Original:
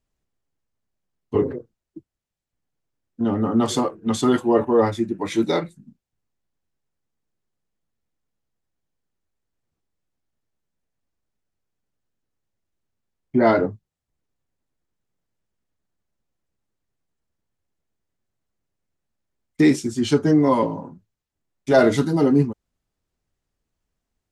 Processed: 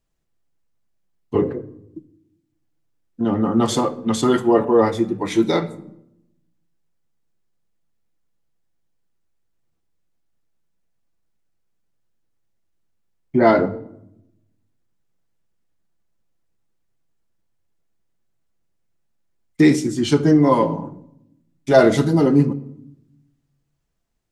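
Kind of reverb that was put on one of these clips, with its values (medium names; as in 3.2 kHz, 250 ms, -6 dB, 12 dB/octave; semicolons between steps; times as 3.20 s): simulated room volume 2300 m³, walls furnished, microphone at 0.76 m; trim +2 dB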